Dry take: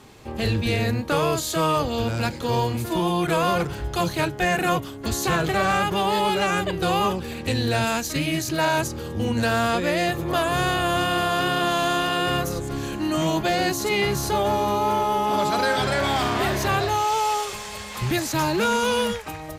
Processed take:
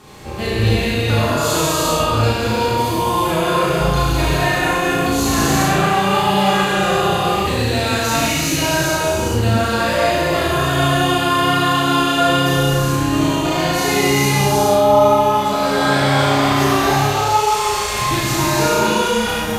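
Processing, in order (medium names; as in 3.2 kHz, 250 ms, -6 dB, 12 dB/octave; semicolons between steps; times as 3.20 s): compression 4:1, threshold -27 dBFS, peak gain reduction 8 dB; flutter echo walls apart 6.2 m, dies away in 0.57 s; gated-style reverb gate 490 ms flat, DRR -8 dB; trim +2.5 dB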